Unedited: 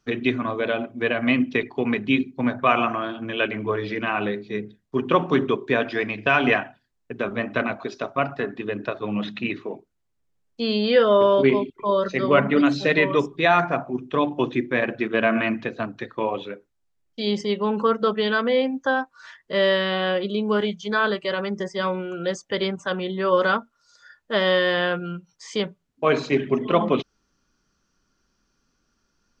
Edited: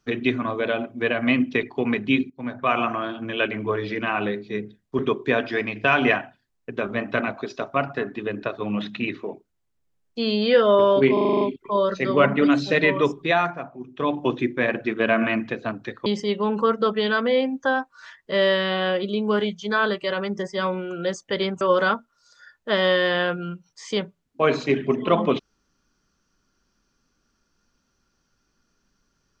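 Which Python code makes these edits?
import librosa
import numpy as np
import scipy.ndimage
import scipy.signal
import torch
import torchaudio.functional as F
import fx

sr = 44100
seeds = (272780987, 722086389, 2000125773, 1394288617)

y = fx.edit(x, sr, fx.fade_in_from(start_s=2.3, length_s=0.87, curve='qsin', floor_db=-15.5),
    fx.cut(start_s=4.99, length_s=0.42),
    fx.stutter(start_s=11.55, slice_s=0.04, count=8),
    fx.fade_down_up(start_s=13.37, length_s=0.95, db=-9.5, fade_s=0.35),
    fx.cut(start_s=16.2, length_s=1.07),
    fx.cut(start_s=22.82, length_s=0.42), tone=tone)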